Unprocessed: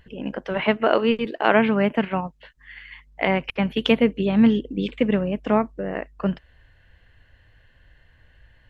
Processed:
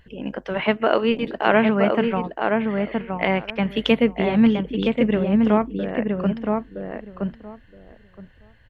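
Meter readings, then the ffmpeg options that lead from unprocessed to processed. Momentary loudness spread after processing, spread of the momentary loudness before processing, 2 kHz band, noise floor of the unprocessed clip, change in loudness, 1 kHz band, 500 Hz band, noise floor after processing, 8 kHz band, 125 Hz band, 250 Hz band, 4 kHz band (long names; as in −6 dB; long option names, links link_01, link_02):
13 LU, 12 LU, +1.0 dB, −57 dBFS, +0.5 dB, +1.5 dB, +1.5 dB, −52 dBFS, can't be measured, +1.5 dB, +2.0 dB, +0.5 dB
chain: -filter_complex "[0:a]asplit=2[link_01][link_02];[link_02]adelay=969,lowpass=frequency=1600:poles=1,volume=-3dB,asplit=2[link_03][link_04];[link_04]adelay=969,lowpass=frequency=1600:poles=1,volume=0.16,asplit=2[link_05][link_06];[link_06]adelay=969,lowpass=frequency=1600:poles=1,volume=0.16[link_07];[link_01][link_03][link_05][link_07]amix=inputs=4:normalize=0"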